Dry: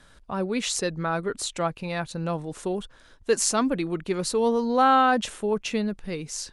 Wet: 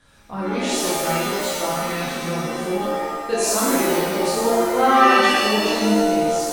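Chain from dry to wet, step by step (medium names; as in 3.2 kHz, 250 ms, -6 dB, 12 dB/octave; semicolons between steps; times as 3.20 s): 0.80–1.44 s: self-modulated delay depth 0.21 ms; pitch-shifted reverb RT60 1.4 s, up +7 st, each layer -2 dB, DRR -7.5 dB; trim -5.5 dB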